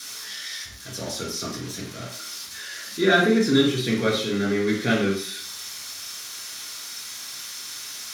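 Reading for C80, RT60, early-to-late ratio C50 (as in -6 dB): 9.0 dB, 0.50 s, 4.5 dB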